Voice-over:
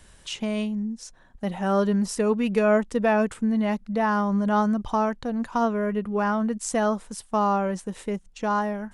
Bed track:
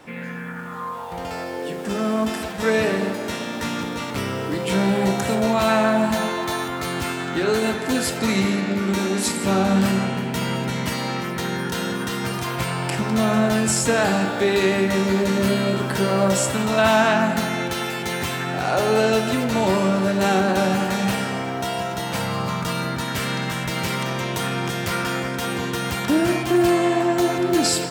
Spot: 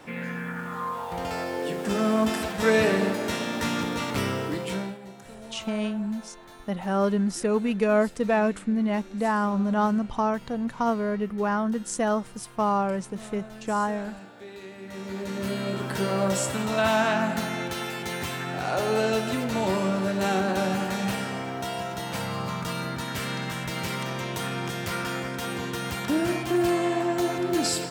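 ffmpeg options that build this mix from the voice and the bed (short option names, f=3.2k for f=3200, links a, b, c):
-filter_complex "[0:a]adelay=5250,volume=-1.5dB[a];[1:a]volume=16.5dB,afade=t=out:st=4.26:d=0.72:silence=0.0749894,afade=t=in:st=14.78:d=1.23:silence=0.133352[b];[a][b]amix=inputs=2:normalize=0"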